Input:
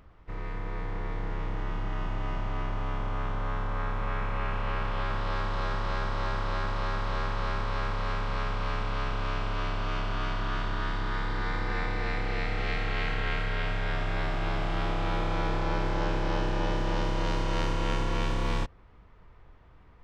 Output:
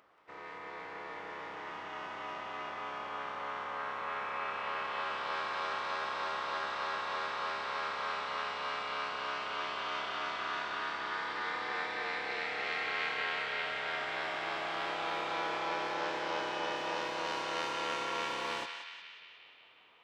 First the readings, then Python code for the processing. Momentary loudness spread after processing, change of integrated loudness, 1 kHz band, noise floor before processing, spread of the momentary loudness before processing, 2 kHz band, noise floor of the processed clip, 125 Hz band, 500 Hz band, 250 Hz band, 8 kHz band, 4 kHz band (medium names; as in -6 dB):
8 LU, -4.0 dB, -1.5 dB, -53 dBFS, 5 LU, -0.5 dB, -55 dBFS, -27.0 dB, -5.0 dB, -13.0 dB, no reading, +0.5 dB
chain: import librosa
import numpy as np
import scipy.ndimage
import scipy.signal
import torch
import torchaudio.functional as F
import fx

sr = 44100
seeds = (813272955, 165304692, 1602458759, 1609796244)

y = scipy.signal.sosfilt(scipy.signal.butter(2, 490.0, 'highpass', fs=sr, output='sos'), x)
y = fx.echo_banded(y, sr, ms=180, feedback_pct=73, hz=2700.0, wet_db=-4.0)
y = F.gain(torch.from_numpy(y), -2.0).numpy()